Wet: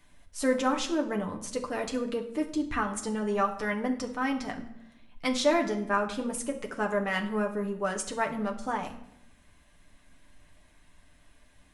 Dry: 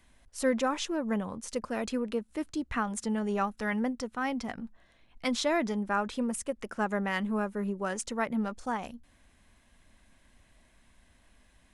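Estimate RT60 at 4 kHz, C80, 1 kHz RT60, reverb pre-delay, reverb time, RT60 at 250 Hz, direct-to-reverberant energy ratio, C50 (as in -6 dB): 0.60 s, 14.5 dB, 0.70 s, 7 ms, 0.80 s, 1.0 s, 1.5 dB, 11.0 dB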